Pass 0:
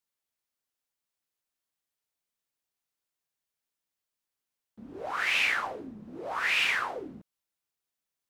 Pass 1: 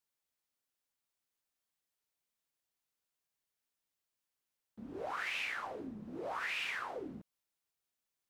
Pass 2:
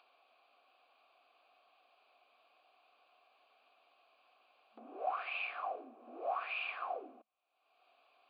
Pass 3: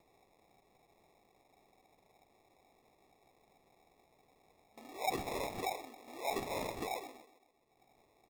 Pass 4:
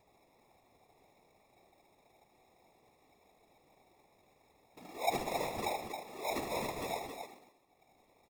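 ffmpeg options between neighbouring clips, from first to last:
ffmpeg -i in.wav -af "acompressor=threshold=-36dB:ratio=4,volume=-1.5dB" out.wav
ffmpeg -i in.wav -filter_complex "[0:a]asplit=3[link_01][link_02][link_03];[link_01]bandpass=frequency=730:width_type=q:width=8,volume=0dB[link_04];[link_02]bandpass=frequency=1090:width_type=q:width=8,volume=-6dB[link_05];[link_03]bandpass=frequency=2440:width_type=q:width=8,volume=-9dB[link_06];[link_04][link_05][link_06]amix=inputs=3:normalize=0,acompressor=mode=upward:threshold=-58dB:ratio=2.5,afftfilt=real='re*between(b*sr/4096,220,4900)':imag='im*between(b*sr/4096,220,4900)':win_size=4096:overlap=0.75,volume=10.5dB" out.wav
ffmpeg -i in.wav -filter_complex "[0:a]asplit=2[link_01][link_02];[link_02]adelay=131,lowpass=frequency=1600:poles=1,volume=-14.5dB,asplit=2[link_03][link_04];[link_04]adelay=131,lowpass=frequency=1600:poles=1,volume=0.51,asplit=2[link_05][link_06];[link_06]adelay=131,lowpass=frequency=1600:poles=1,volume=0.51,asplit=2[link_07][link_08];[link_08]adelay=131,lowpass=frequency=1600:poles=1,volume=0.51,asplit=2[link_09][link_10];[link_10]adelay=131,lowpass=frequency=1600:poles=1,volume=0.51[link_11];[link_01][link_03][link_05][link_07][link_09][link_11]amix=inputs=6:normalize=0,acrusher=samples=29:mix=1:aa=0.000001,volume=1dB" out.wav
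ffmpeg -i in.wav -filter_complex "[0:a]afftfilt=real='hypot(re,im)*cos(2*PI*random(0))':imag='hypot(re,im)*sin(2*PI*random(1))':win_size=512:overlap=0.75,asplit=2[link_01][link_02];[link_02]aecho=0:1:75.8|271.1:0.398|0.447[link_03];[link_01][link_03]amix=inputs=2:normalize=0,volume=6.5dB" out.wav

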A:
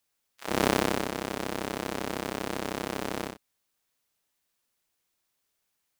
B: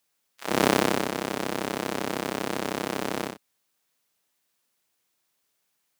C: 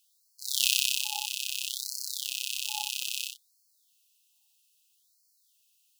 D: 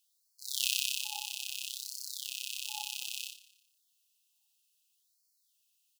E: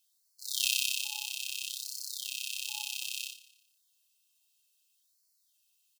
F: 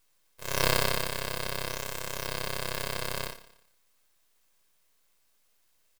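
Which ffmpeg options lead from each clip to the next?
ffmpeg -i in.wav -af "highpass=110,volume=3.5dB" out.wav
ffmpeg -i in.wav -af "afftfilt=real='re*(1-between(b*sr/4096,870,2500))':imag='im*(1-between(b*sr/4096,870,2500))':win_size=4096:overlap=0.75,afftfilt=real='re*gte(b*sr/1024,810*pow(4200/810,0.5+0.5*sin(2*PI*0.61*pts/sr)))':imag='im*gte(b*sr/1024,810*pow(4200/810,0.5+0.5*sin(2*PI*0.61*pts/sr)))':win_size=1024:overlap=0.75,volume=6.5dB" out.wav
ffmpeg -i in.wav -af "aecho=1:1:118|236|354|472:0.158|0.065|0.0266|0.0109,volume=-6dB" out.wav
ffmpeg -i in.wav -af "aecho=1:1:1.9:0.74" out.wav
ffmpeg -i in.wav -af "aeval=exprs='abs(val(0))':channel_layout=same,volume=5dB" out.wav

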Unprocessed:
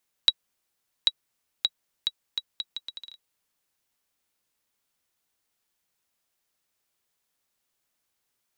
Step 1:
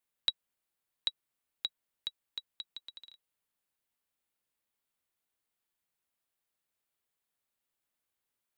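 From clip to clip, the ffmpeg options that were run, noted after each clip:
ffmpeg -i in.wav -af "equalizer=frequency=5700:width=1.8:gain=-6,volume=-7.5dB" out.wav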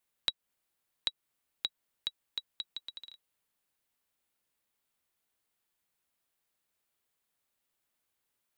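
ffmpeg -i in.wav -af "acompressor=threshold=-36dB:ratio=2,volume=4dB" out.wav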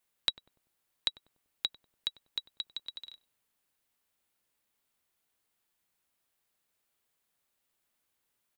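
ffmpeg -i in.wav -filter_complex "[0:a]asplit=2[link_01][link_02];[link_02]adelay=97,lowpass=frequency=800:poles=1,volume=-14dB,asplit=2[link_03][link_04];[link_04]adelay=97,lowpass=frequency=800:poles=1,volume=0.47,asplit=2[link_05][link_06];[link_06]adelay=97,lowpass=frequency=800:poles=1,volume=0.47,asplit=2[link_07][link_08];[link_08]adelay=97,lowpass=frequency=800:poles=1,volume=0.47[link_09];[link_01][link_03][link_05][link_07][link_09]amix=inputs=5:normalize=0,volume=2dB" out.wav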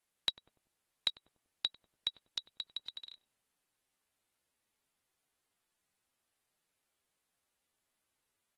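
ffmpeg -i in.wav -af "volume=-3dB" -ar 44100 -c:a aac -b:a 32k out.aac

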